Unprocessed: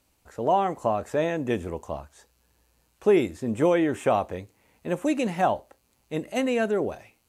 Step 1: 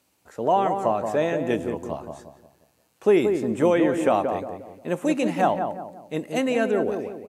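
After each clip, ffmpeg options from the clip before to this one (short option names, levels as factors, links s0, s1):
-filter_complex "[0:a]highpass=130,asplit=2[s0][s1];[s1]adelay=177,lowpass=f=1100:p=1,volume=0.562,asplit=2[s2][s3];[s3]adelay=177,lowpass=f=1100:p=1,volume=0.43,asplit=2[s4][s5];[s5]adelay=177,lowpass=f=1100:p=1,volume=0.43,asplit=2[s6][s7];[s7]adelay=177,lowpass=f=1100:p=1,volume=0.43,asplit=2[s8][s9];[s9]adelay=177,lowpass=f=1100:p=1,volume=0.43[s10];[s0][s2][s4][s6][s8][s10]amix=inputs=6:normalize=0,volume=1.19"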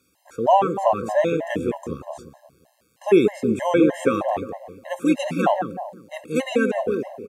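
-af "afftfilt=real='re*gt(sin(2*PI*3.2*pts/sr)*(1-2*mod(floor(b*sr/1024/540),2)),0)':imag='im*gt(sin(2*PI*3.2*pts/sr)*(1-2*mod(floor(b*sr/1024/540),2)),0)':win_size=1024:overlap=0.75,volume=1.78"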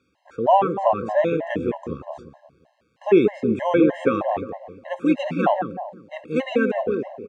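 -af "lowpass=3200"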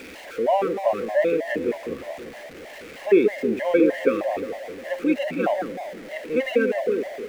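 -af "aeval=exprs='val(0)+0.5*0.0266*sgn(val(0))':c=same,equalizer=f=125:t=o:w=1:g=-10,equalizer=f=250:t=o:w=1:g=4,equalizer=f=500:t=o:w=1:g=9,equalizer=f=1000:t=o:w=1:g=-7,equalizer=f=2000:t=o:w=1:g=11,volume=0.422"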